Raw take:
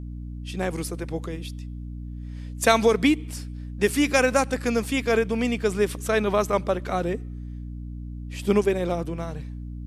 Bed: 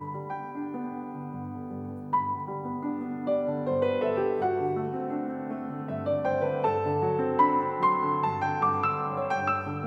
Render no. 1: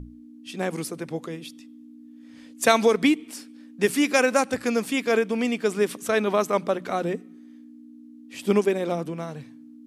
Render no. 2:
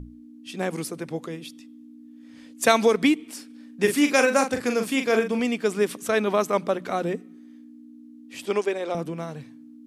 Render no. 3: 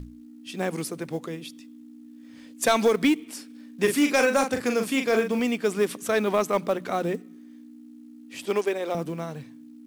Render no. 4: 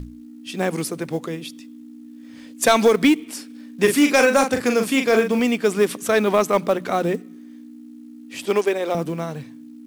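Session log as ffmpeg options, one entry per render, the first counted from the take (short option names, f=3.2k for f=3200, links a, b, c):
-af "bandreject=f=60:t=h:w=6,bandreject=f=120:t=h:w=6,bandreject=f=180:t=h:w=6"
-filter_complex "[0:a]asettb=1/sr,asplit=3[a][b][c];[a]atrim=end=3.464[d];[b]atrim=start=3.46:end=5.4,asetpts=PTS-STARTPTS,afade=t=in:d=0.004:c=qsin,afade=t=out:st=1.936:d=0.004:c=qsin,asplit=2[e][f];[f]adelay=41,volume=-7dB[g];[e][g]amix=inputs=2:normalize=0,atrim=end_sample=85554[h];[c]atrim=start=5.396[i];[d][h]acrossfade=d=0.004:c1=hsin:c2=qsin[j];[j][i]acrossfade=d=0.004:c1=qsin:c2=hsin,asettb=1/sr,asplit=3[k][l][m];[k]atrim=end=8.454[n];[l]atrim=start=8.45:end=8.95,asetpts=PTS-STARTPTS,afade=t=in:d=0.004:c=qsin,afade=t=out:st=0.496:d=0.004:c=qsin,highpass=410,lowpass=7.9k[o];[m]atrim=start=8.946[p];[n][o]acrossfade=d=0.004:c1=hsin:c2=qsin[q];[q][p]acrossfade=d=0.004:c1=qsin:c2=hsin"
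-af "asoftclip=type=tanh:threshold=-11.5dB,acrusher=bits=7:mode=log:mix=0:aa=0.000001"
-af "volume=5.5dB"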